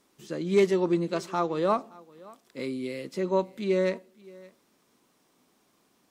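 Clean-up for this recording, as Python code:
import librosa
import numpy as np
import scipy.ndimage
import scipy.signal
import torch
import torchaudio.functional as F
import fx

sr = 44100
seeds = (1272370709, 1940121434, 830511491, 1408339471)

y = fx.fix_declip(x, sr, threshold_db=-13.0)
y = fx.fix_echo_inverse(y, sr, delay_ms=571, level_db=-23.0)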